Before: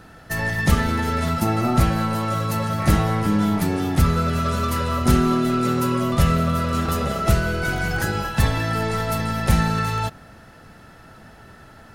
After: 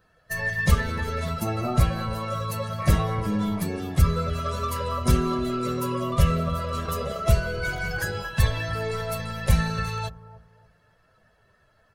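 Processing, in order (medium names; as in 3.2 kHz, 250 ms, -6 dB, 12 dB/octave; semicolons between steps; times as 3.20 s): expander on every frequency bin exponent 1.5; comb 1.8 ms, depth 53%; bucket-brigade echo 290 ms, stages 2048, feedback 30%, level -16 dB; trim -2 dB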